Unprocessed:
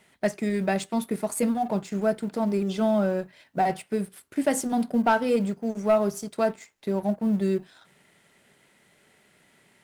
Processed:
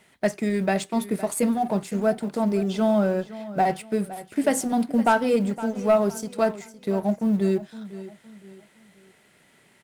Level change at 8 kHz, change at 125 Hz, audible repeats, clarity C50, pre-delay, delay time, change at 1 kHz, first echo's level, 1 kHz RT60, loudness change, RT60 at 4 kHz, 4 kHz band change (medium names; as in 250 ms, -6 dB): +2.0 dB, +2.5 dB, 3, no reverb, no reverb, 513 ms, +2.0 dB, -16.0 dB, no reverb, +2.0 dB, no reverb, +2.0 dB